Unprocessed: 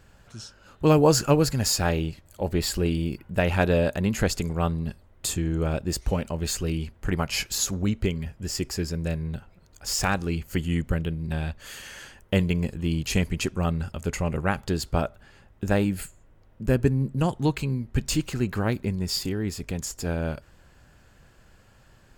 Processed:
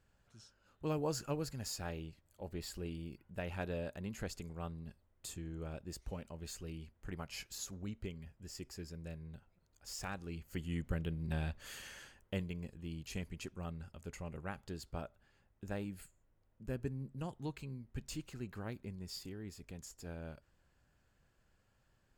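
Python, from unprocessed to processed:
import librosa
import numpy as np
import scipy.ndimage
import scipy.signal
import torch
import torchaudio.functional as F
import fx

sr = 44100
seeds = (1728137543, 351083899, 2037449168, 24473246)

y = fx.gain(x, sr, db=fx.line((10.15, -18.5), (11.29, -8.5), (11.83, -8.5), (12.51, -18.5)))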